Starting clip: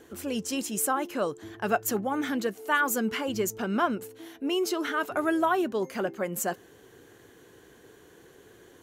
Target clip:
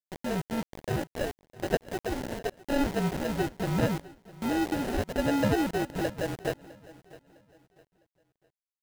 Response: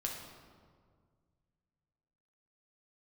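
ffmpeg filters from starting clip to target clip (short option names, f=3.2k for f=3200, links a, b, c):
-filter_complex "[0:a]asettb=1/sr,asplit=3[a][b][c];[a]atrim=end=0.634[d];[b]atrim=start=0.63:end=2.52,asetpts=PTS-STARTPTS,afade=t=in:d=0.004:c=qsin,afade=t=out:st=1.886:d=0.004:c=qsin,highpass=510[e];[c]atrim=start=2.516[f];[d][e]acrossfade=d=0.004:c1=hsin:c2=qsin[g];[g][f]acrossfade=d=0.004:c1=qsin:c2=hsin,afreqshift=-45,lowpass=3.5k,acrusher=samples=39:mix=1:aa=0.000001,aemphasis=mode=reproduction:type=75kf,acrusher=bits=5:mix=0:aa=0.000001,aecho=1:1:656|1312|1968:0.1|0.033|0.0109"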